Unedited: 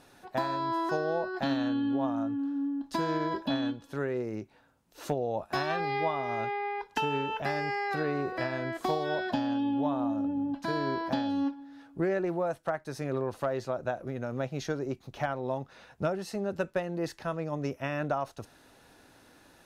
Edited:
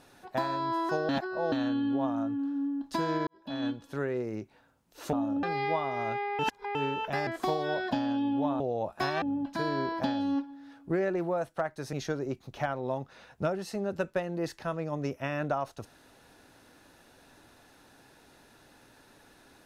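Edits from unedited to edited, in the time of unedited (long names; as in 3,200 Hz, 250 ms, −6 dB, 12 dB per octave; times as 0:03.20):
0:01.09–0:01.52: reverse
0:03.27–0:03.65: fade in quadratic
0:05.13–0:05.75: swap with 0:10.01–0:10.31
0:06.71–0:07.07: reverse
0:07.59–0:08.68: remove
0:13.02–0:14.53: remove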